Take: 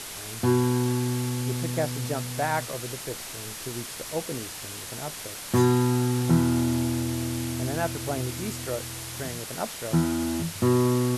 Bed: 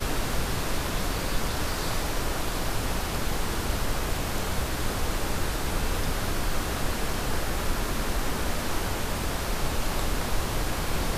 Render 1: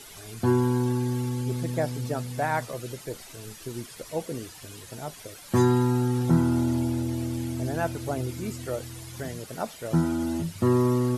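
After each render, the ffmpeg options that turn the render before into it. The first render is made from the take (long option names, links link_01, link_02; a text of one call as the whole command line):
ffmpeg -i in.wav -af "afftdn=noise_reduction=12:noise_floor=-38" out.wav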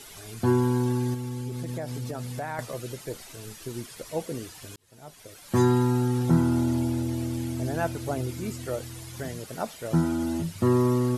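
ffmpeg -i in.wav -filter_complex "[0:a]asettb=1/sr,asplit=3[link_01][link_02][link_03];[link_01]atrim=end=1.144[link_04];[link_02]atrim=start=1.14:end=2.59,asetpts=PTS-STARTPTS,afade=type=in:duration=0.004:curve=qsin,afade=type=out:start_time=1.446:duration=0.004:curve=qsin,acompressor=threshold=-29dB:ratio=6:attack=3.2:release=140:knee=1:detection=peak[link_05];[link_03]atrim=start=2.586[link_06];[link_04][link_05]acrossfade=duration=0.004:curve1=hsin:curve2=qsin[link_07];[link_07][link_06]acrossfade=duration=0.004:curve1=qsin:curve2=hsin,asplit=2[link_08][link_09];[link_08]atrim=end=4.76,asetpts=PTS-STARTPTS,afade=type=out:start_time=4.756:duration=0.004:curve=hsin[link_10];[link_09]atrim=start=4.76,asetpts=PTS-STARTPTS,afade=type=in:duration=0.89[link_11];[link_10][link_11]concat=n=2:v=0:a=1" out.wav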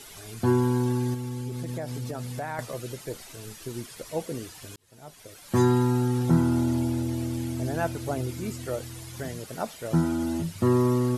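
ffmpeg -i in.wav -af anull out.wav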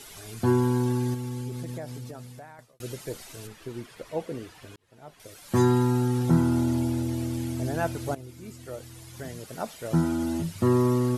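ffmpeg -i in.wav -filter_complex "[0:a]asettb=1/sr,asplit=3[link_01][link_02][link_03];[link_01]atrim=end=3.474[link_04];[link_02]atrim=start=3.47:end=5.2,asetpts=PTS-STARTPTS,afade=type=in:duration=0.004:curve=qsin,afade=type=out:start_time=1.726:duration=0.004:curve=qsin,bass=frequency=250:gain=-3,treble=frequency=4000:gain=-12[link_05];[link_03]atrim=start=5.196[link_06];[link_04][link_05]acrossfade=duration=0.004:curve1=hsin:curve2=qsin[link_07];[link_07][link_06]acrossfade=duration=0.004:curve1=qsin:curve2=hsin,asplit=3[link_08][link_09][link_10];[link_08]atrim=end=2.8,asetpts=PTS-STARTPTS,afade=type=out:start_time=1.38:duration=1.42[link_11];[link_09]atrim=start=2.8:end=8.15,asetpts=PTS-STARTPTS,afade=type=in:duration=0.004:curve=hsin,afade=type=out:start_time=5.346:duration=0.004:curve=hsin:silence=0.199526[link_12];[link_10]atrim=start=8.15,asetpts=PTS-STARTPTS,afade=type=in:duration=1.88:silence=0.199526[link_13];[link_11][link_12][link_13]concat=n=3:v=0:a=1" out.wav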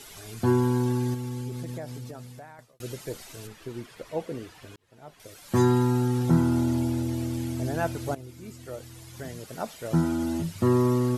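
ffmpeg -i in.wav -af "equalizer=frequency=9700:width_type=o:width=0.21:gain=-3" out.wav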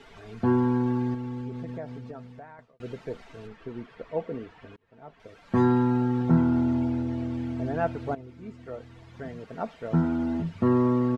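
ffmpeg -i in.wav -af "lowpass=2200,aecho=1:1:4.4:0.36" out.wav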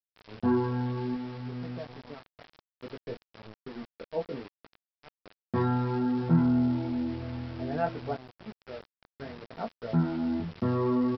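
ffmpeg -i in.wav -af "flanger=delay=16.5:depth=6.3:speed=0.61,aresample=11025,aeval=exprs='val(0)*gte(abs(val(0)),0.00794)':channel_layout=same,aresample=44100" out.wav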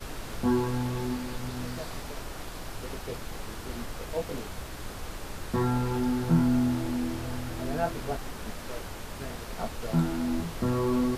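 ffmpeg -i in.wav -i bed.wav -filter_complex "[1:a]volume=-10.5dB[link_01];[0:a][link_01]amix=inputs=2:normalize=0" out.wav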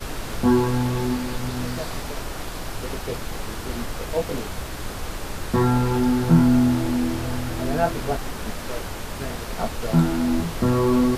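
ffmpeg -i in.wav -af "volume=7.5dB" out.wav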